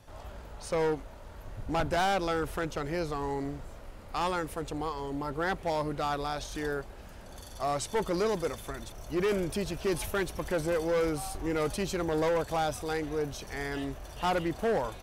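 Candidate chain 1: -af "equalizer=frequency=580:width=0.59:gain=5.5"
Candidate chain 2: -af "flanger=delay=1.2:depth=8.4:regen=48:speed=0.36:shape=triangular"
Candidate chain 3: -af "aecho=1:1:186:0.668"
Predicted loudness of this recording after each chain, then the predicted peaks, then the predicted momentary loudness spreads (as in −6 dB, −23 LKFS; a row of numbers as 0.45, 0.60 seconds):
−28.0, −36.0, −30.5 LKFS; −17.5, −24.0, −19.5 dBFS; 18, 16, 11 LU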